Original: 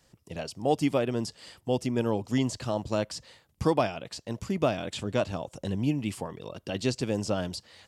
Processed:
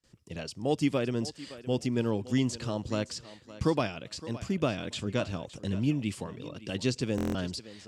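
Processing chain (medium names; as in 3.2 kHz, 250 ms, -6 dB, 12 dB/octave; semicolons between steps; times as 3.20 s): low-pass 9.5 kHz 12 dB/octave; peaking EQ 750 Hz -7.5 dB 1 oct; gate with hold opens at -57 dBFS; thinning echo 565 ms, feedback 22%, high-pass 210 Hz, level -15.5 dB; buffer glitch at 7.16 s, samples 1024, times 7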